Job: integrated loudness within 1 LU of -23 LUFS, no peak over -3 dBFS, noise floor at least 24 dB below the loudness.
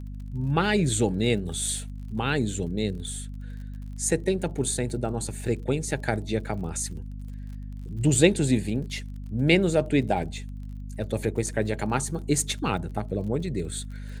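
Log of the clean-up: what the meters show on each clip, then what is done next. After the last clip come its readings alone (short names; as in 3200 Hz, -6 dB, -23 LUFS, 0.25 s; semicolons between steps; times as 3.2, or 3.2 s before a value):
ticks 43/s; hum 50 Hz; harmonics up to 250 Hz; hum level -34 dBFS; loudness -26.5 LUFS; peak -4.5 dBFS; loudness target -23.0 LUFS
-> de-click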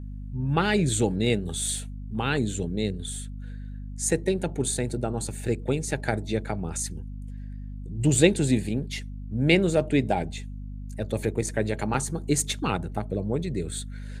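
ticks 0.070/s; hum 50 Hz; harmonics up to 250 Hz; hum level -34 dBFS
-> notches 50/100/150/200/250 Hz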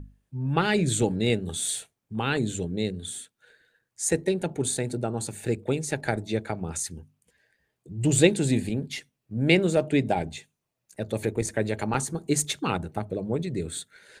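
hum none; loudness -27.0 LUFS; peak -4.5 dBFS; loudness target -23.0 LUFS
-> gain +4 dB; limiter -3 dBFS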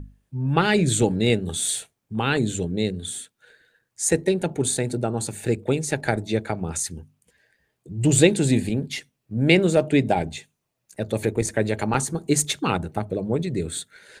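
loudness -23.5 LUFS; peak -3.0 dBFS; noise floor -78 dBFS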